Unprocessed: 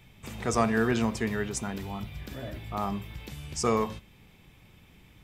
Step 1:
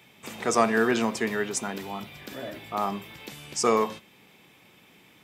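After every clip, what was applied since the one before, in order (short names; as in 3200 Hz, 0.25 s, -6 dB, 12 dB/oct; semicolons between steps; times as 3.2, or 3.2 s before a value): HPF 260 Hz 12 dB/oct; gain +4.5 dB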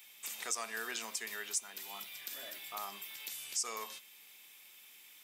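differentiator; compressor 2:1, threshold -47 dBFS, peak gain reduction 12 dB; gain +6 dB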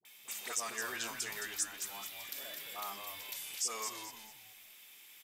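dispersion highs, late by 52 ms, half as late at 650 Hz; frequency-shifting echo 0.216 s, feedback 33%, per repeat -110 Hz, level -7 dB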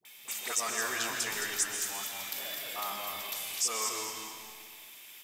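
reverb RT60 1.8 s, pre-delay 90 ms, DRR 4 dB; gain +5 dB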